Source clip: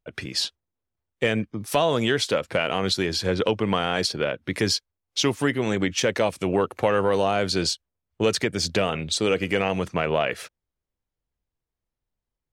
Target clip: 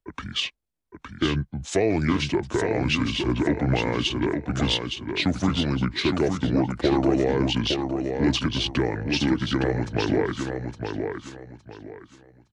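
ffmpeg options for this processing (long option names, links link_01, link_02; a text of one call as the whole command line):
ffmpeg -i in.wav -filter_complex "[0:a]acrossover=split=120|1500|3100[link_01][link_02][link_03][link_04];[link_03]acompressor=threshold=-43dB:ratio=5[link_05];[link_01][link_02][link_05][link_04]amix=inputs=4:normalize=0,asetrate=29433,aresample=44100,atempo=1.49831,aecho=1:1:863|1726|2589|3452:0.531|0.143|0.0387|0.0104" out.wav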